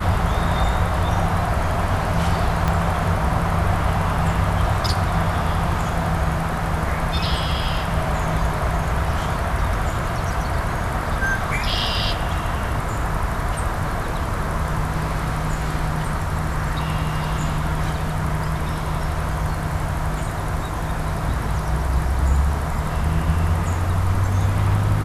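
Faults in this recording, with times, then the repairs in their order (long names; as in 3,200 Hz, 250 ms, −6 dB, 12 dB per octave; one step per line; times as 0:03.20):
0:02.68: click −9 dBFS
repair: click removal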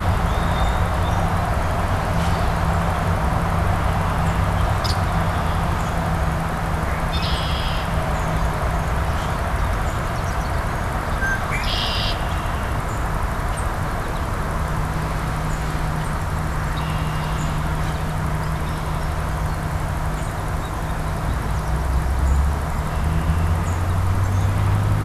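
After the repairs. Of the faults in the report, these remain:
0:02.68: click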